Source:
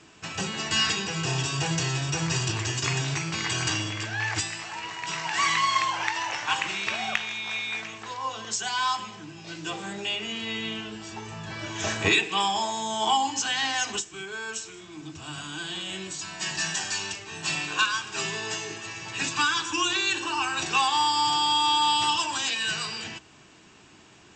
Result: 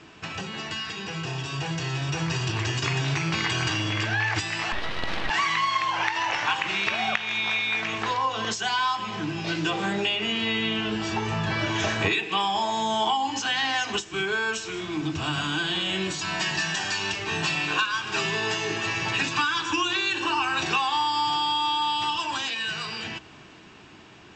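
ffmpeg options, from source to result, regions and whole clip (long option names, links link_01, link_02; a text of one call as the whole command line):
ffmpeg -i in.wav -filter_complex "[0:a]asettb=1/sr,asplit=3[link_01][link_02][link_03];[link_01]atrim=end=4.724[link_04];[link_02]atrim=start=4.72:end=5.3,asetpts=PTS-STARTPTS,afade=type=in:duration=0.004:curve=qsin,afade=type=out:start_time=0.576:duration=0.004:curve=qsin,lowpass=2100,aeval=exprs='abs(val(0))':channel_layout=same[link_05];[link_03]atrim=start=5.296[link_06];[link_04][link_05]acrossfade=duration=0.004:curve1=hsin:curve2=qsin[link_07];[link_07][link_06]acrossfade=duration=0.004:curve1=qsin:curve2=hsin,acompressor=threshold=-36dB:ratio=5,lowpass=4300,dynaudnorm=framelen=130:gausssize=31:maxgain=8dB,volume=5dB" out.wav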